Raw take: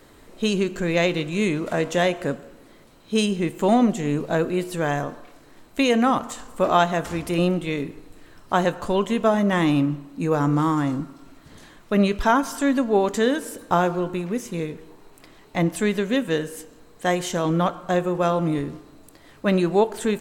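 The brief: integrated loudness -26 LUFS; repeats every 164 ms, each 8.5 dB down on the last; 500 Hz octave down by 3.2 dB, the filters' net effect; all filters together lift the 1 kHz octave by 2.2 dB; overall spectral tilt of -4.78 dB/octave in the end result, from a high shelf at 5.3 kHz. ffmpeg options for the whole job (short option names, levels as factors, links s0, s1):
-af "equalizer=f=500:t=o:g=-5.5,equalizer=f=1000:t=o:g=4.5,highshelf=f=5300:g=8,aecho=1:1:164|328|492|656:0.376|0.143|0.0543|0.0206,volume=0.668"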